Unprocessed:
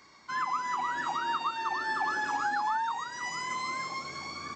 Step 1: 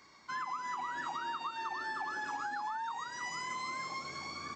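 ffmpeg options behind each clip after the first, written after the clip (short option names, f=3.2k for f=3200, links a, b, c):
-af "acompressor=threshold=-32dB:ratio=6,volume=-3dB"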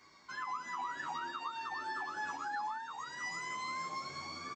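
-filter_complex "[0:a]asplit=2[a][b];[b]adelay=10.3,afreqshift=1.9[c];[a][c]amix=inputs=2:normalize=1,volume=1.5dB"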